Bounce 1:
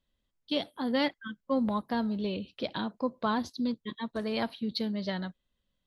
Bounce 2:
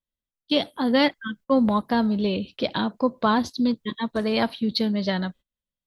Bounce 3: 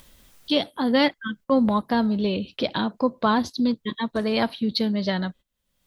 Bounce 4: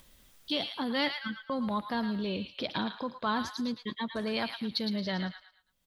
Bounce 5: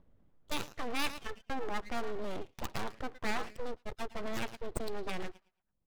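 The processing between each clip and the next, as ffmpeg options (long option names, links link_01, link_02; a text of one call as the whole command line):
ffmpeg -i in.wav -af "agate=range=-22dB:threshold=-52dB:ratio=16:detection=peak,volume=8.5dB" out.wav
ffmpeg -i in.wav -af "acompressor=mode=upward:threshold=-24dB:ratio=2.5" out.wav
ffmpeg -i in.wav -filter_complex "[0:a]acrossover=split=1000[link_01][link_02];[link_01]alimiter=limit=-21dB:level=0:latency=1[link_03];[link_02]aecho=1:1:111|222|333|444:0.501|0.175|0.0614|0.0215[link_04];[link_03][link_04]amix=inputs=2:normalize=0,volume=-6.5dB" out.wav
ffmpeg -i in.wav -af "adynamicsmooth=sensitivity=5:basefreq=650,aeval=exprs='abs(val(0))':channel_layout=same,volume=-1dB" out.wav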